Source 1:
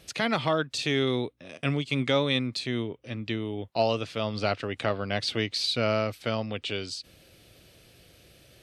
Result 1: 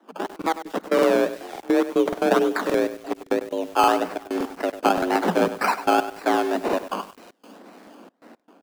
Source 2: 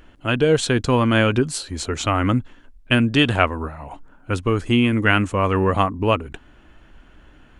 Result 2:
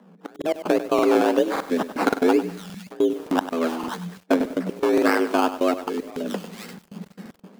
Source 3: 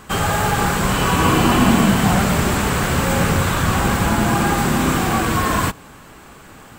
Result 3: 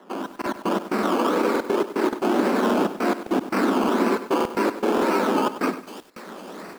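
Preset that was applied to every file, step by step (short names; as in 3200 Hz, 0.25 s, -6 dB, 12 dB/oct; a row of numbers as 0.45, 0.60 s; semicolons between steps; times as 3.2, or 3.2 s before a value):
decimation with a swept rate 19×, swing 60% 1.9 Hz; high shelf 2800 Hz -12 dB; thin delay 0.505 s, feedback 48%, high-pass 3100 Hz, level -14 dB; dynamic EQ 1700 Hz, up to -6 dB, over -45 dBFS, Q 7.4; frequency shift +170 Hz; compressor, threshold -21 dBFS; step gate "xx.x.x.xxx" 115 bpm -24 dB; AGC gain up to 11.5 dB; crackling interface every 0.57 s, samples 2048, repeat, from 0.37; lo-fi delay 98 ms, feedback 35%, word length 6-bit, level -12 dB; match loudness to -23 LUFS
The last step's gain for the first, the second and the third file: -1.5, -3.0, -6.5 dB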